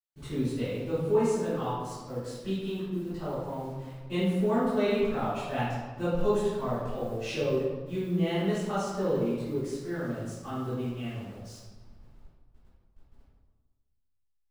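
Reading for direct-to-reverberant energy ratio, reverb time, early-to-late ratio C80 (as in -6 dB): -15.5 dB, 1.4 s, 1.0 dB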